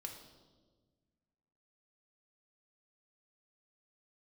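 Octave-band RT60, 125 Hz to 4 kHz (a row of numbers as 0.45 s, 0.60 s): 2.1 s, 2.0 s, 1.7 s, 1.2 s, 0.85 s, 1.1 s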